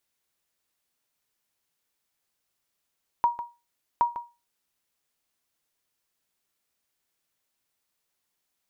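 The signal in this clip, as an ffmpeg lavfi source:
ffmpeg -f lavfi -i "aevalsrc='0.2*(sin(2*PI*951*mod(t,0.77))*exp(-6.91*mod(t,0.77)/0.27)+0.251*sin(2*PI*951*max(mod(t,0.77)-0.15,0))*exp(-6.91*max(mod(t,0.77)-0.15,0)/0.27))':duration=1.54:sample_rate=44100" out.wav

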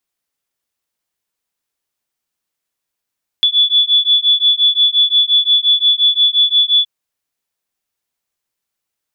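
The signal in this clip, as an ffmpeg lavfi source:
ffmpeg -f lavfi -i "aevalsrc='0.237*(sin(2*PI*3440*t)+sin(2*PI*3445.7*t))':duration=3.42:sample_rate=44100" out.wav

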